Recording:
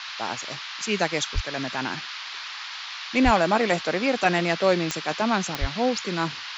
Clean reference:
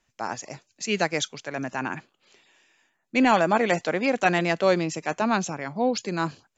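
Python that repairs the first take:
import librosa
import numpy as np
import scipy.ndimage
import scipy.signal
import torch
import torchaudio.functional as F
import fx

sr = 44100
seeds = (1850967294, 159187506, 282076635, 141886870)

y = fx.fix_declick_ar(x, sr, threshold=10.0)
y = fx.fix_deplosive(y, sr, at_s=(1.34, 3.24, 5.6))
y = fx.noise_reduce(y, sr, print_start_s=2.41, print_end_s=2.91, reduce_db=30.0)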